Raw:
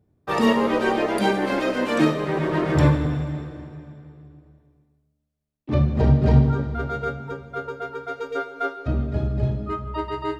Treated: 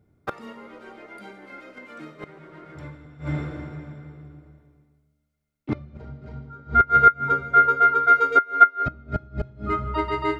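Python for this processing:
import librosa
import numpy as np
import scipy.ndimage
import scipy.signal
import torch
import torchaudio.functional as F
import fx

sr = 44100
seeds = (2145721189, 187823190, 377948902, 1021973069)

y = fx.gate_flip(x, sr, shuts_db=-16.0, range_db=-25)
y = fx.small_body(y, sr, hz=(1400.0, 2100.0), ring_ms=70, db=18)
y = y * 10.0 ** (2.0 / 20.0)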